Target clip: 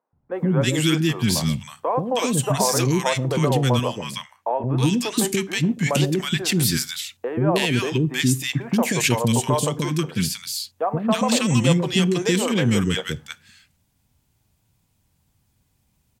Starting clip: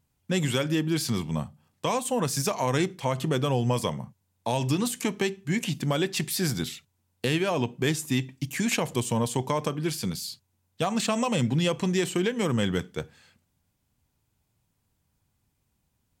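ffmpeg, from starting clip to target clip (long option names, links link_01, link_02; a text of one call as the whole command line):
ffmpeg -i in.wav -filter_complex "[0:a]asettb=1/sr,asplit=3[link_01][link_02][link_03];[link_01]atrim=end=3.664[link_04];[link_02]atrim=start=3.66:end=4.51,asetpts=PTS-STARTPTS,afade=type=in:duration=0.004:curve=qsin,afade=type=out:start_time=0.846:duration=0.004:curve=qsin,bass=frequency=250:gain=-11,treble=frequency=4000:gain=-8[link_05];[link_03]atrim=start=4.506[link_06];[link_04][link_05]acrossfade=duration=0.004:curve1=hsin:curve2=qsin[link_07];[link_07][link_06]acrossfade=duration=0.004:curve1=qsin:curve2=hsin,acrossover=split=400|1300[link_08][link_09][link_10];[link_08]adelay=130[link_11];[link_10]adelay=320[link_12];[link_11][link_09][link_12]amix=inputs=3:normalize=0,volume=7.5dB" out.wav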